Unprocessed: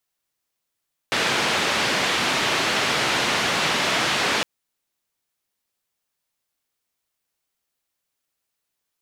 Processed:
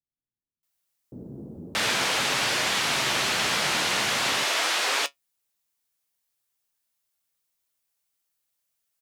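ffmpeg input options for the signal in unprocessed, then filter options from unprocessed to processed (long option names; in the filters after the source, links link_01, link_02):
-f lavfi -i "anoisesrc=color=white:duration=3.31:sample_rate=44100:seed=1,highpass=frequency=130,lowpass=frequency=3300,volume=-9.2dB"
-filter_complex "[0:a]highshelf=frequency=5900:gain=8,flanger=delay=7.1:depth=9:regen=65:speed=0.45:shape=sinusoidal,acrossover=split=330[link_01][link_02];[link_02]adelay=630[link_03];[link_01][link_03]amix=inputs=2:normalize=0"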